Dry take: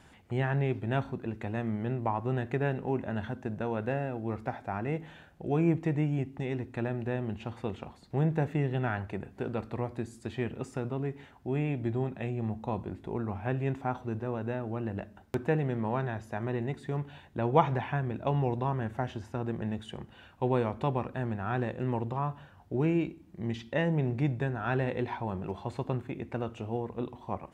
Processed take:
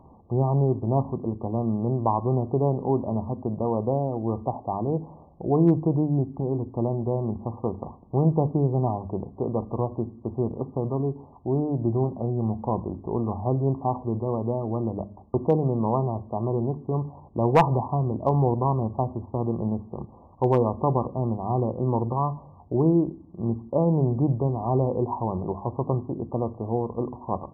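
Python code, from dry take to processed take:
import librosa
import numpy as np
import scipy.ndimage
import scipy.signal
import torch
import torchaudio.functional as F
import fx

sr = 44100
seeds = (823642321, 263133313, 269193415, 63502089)

y = fx.brickwall_lowpass(x, sr, high_hz=1200.0)
y = fx.hum_notches(y, sr, base_hz=50, count=5)
y = np.clip(y, -10.0 ** (-17.0 / 20.0), 10.0 ** (-17.0 / 20.0))
y = F.gain(torch.from_numpy(y), 7.5).numpy()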